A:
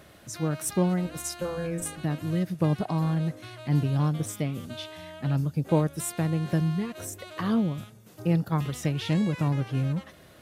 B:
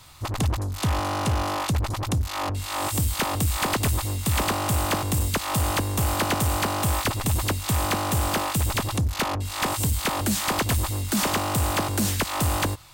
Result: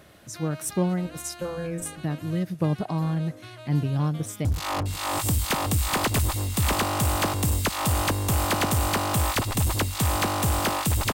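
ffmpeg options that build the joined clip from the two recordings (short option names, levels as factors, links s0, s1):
-filter_complex "[0:a]apad=whole_dur=11.13,atrim=end=11.13,atrim=end=4.452[s0];[1:a]atrim=start=2.138:end=8.82[s1];[s0][s1]acrossfade=d=0.004:c1=hsin:c2=hsin,asplit=2[s2][s3];[s3]afade=t=in:st=4.07:d=0.01,afade=t=out:st=4.45:d=0.01,aecho=0:1:370|740|1110|1480|1850|2220|2590|2960:0.211349|0.137377|0.0892949|0.0580417|0.0377271|0.0245226|0.0159397|0.0103608[s4];[s2][s4]amix=inputs=2:normalize=0"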